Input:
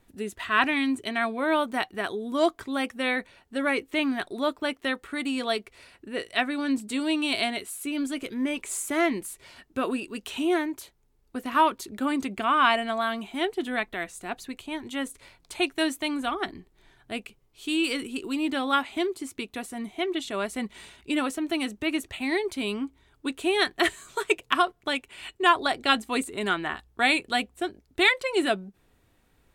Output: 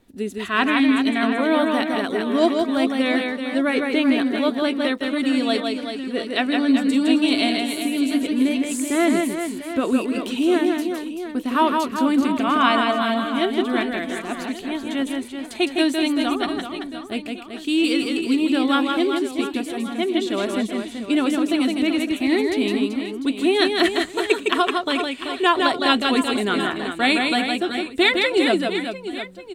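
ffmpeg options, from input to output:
ffmpeg -i in.wav -af "equalizer=frequency=250:width_type=o:width=1:gain=8,equalizer=frequency=500:width_type=o:width=1:gain=4,equalizer=frequency=4000:width_type=o:width=1:gain=5,aecho=1:1:160|384|697.6|1137|1751:0.631|0.398|0.251|0.158|0.1" out.wav

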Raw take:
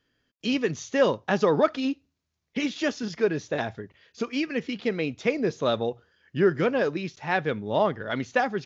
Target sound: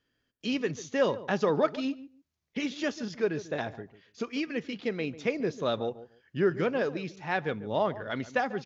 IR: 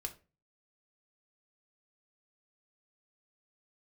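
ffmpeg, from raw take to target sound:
-filter_complex "[0:a]asplit=2[link_01][link_02];[link_02]adelay=144,lowpass=frequency=1100:poles=1,volume=-14.5dB,asplit=2[link_03][link_04];[link_04]adelay=144,lowpass=frequency=1100:poles=1,volume=0.18[link_05];[link_01][link_03][link_05]amix=inputs=3:normalize=0,volume=-4.5dB"

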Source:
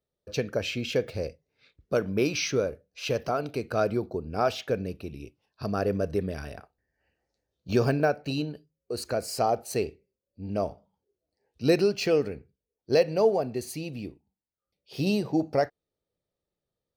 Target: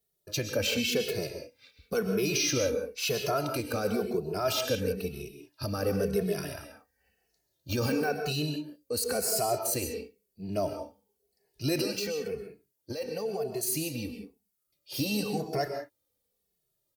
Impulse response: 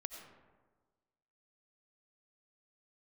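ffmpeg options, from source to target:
-filter_complex "[0:a]aemphasis=mode=production:type=75fm,alimiter=limit=-20dB:level=0:latency=1:release=20,asettb=1/sr,asplit=3[link_01][link_02][link_03];[link_01]atrim=end=11.984[link_04];[link_02]atrim=start=11.98:end=13.63,asetpts=PTS-STARTPTS,afade=type=in:duration=0.004:curve=qsin,afade=type=out:start_time=1.646:duration=0.004:curve=qsin,acompressor=threshold=-34dB:ratio=4[link_05];[link_03]atrim=start=13.626[link_06];[link_04][link_05]acrossfade=duration=0.004:curve1=hsin:curve2=qsin[link_07];[link_07][link_06]acrossfade=duration=0.004:curve1=qsin:curve2=hsin[link_08];[1:a]atrim=start_sample=2205,atrim=end_sample=6174,asetrate=30429,aresample=44100[link_09];[link_08][link_09]afir=irnorm=-1:irlink=0,asplit=2[link_10][link_11];[link_11]adelay=2.3,afreqshift=-0.97[link_12];[link_10][link_12]amix=inputs=2:normalize=1,volume=5.5dB"

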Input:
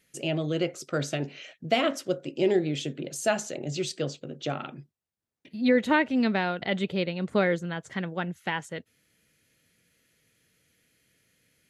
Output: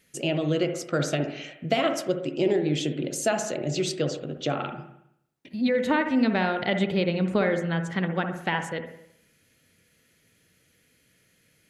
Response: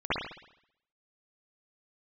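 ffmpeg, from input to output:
-filter_complex "[0:a]acompressor=threshold=-24dB:ratio=5,asplit=2[link_01][link_02];[1:a]atrim=start_sample=2205,lowpass=2100[link_03];[link_02][link_03]afir=irnorm=-1:irlink=0,volume=-16.5dB[link_04];[link_01][link_04]amix=inputs=2:normalize=0,volume=3.5dB"

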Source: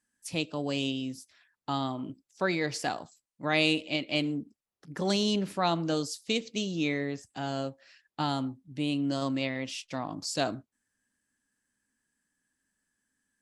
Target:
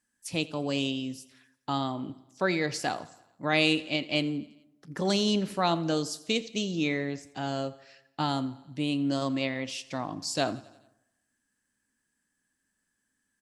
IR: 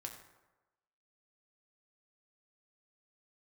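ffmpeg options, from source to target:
-filter_complex "[0:a]aecho=1:1:86|172|258|344|430:0.0891|0.0517|0.03|0.0174|0.0101,asplit=2[link_01][link_02];[1:a]atrim=start_sample=2205[link_03];[link_02][link_03]afir=irnorm=-1:irlink=0,volume=-11dB[link_04];[link_01][link_04]amix=inputs=2:normalize=0"

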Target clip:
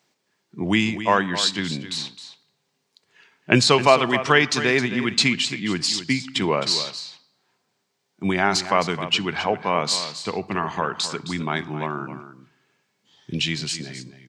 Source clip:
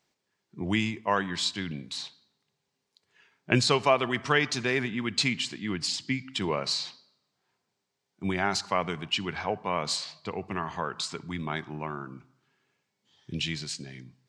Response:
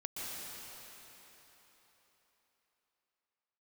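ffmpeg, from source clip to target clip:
-af "highpass=120,aecho=1:1:264:0.251,volume=7.5dB"

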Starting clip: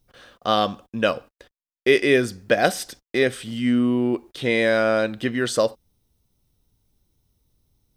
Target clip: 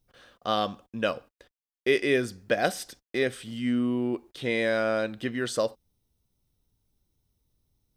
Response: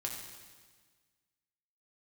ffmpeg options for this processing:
-af "volume=-6.5dB"

